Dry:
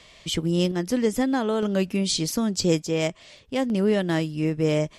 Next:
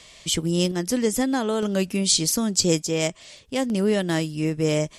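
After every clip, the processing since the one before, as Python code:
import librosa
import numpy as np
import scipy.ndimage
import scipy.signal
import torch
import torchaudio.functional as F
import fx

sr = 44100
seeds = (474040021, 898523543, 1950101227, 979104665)

y = fx.peak_eq(x, sr, hz=8900.0, db=10.0, octaves=1.6)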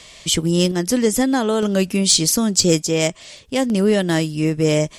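y = 10.0 ** (-6.5 / 20.0) * np.tanh(x / 10.0 ** (-6.5 / 20.0))
y = F.gain(torch.from_numpy(y), 5.5).numpy()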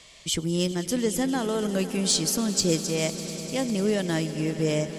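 y = fx.echo_swell(x, sr, ms=100, loudest=5, wet_db=-18.0)
y = F.gain(torch.from_numpy(y), -8.5).numpy()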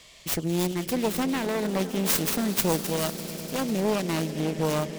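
y = fx.self_delay(x, sr, depth_ms=0.77)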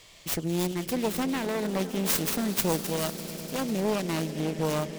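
y = fx.dmg_noise_colour(x, sr, seeds[0], colour='pink', level_db=-60.0)
y = F.gain(torch.from_numpy(y), -2.0).numpy()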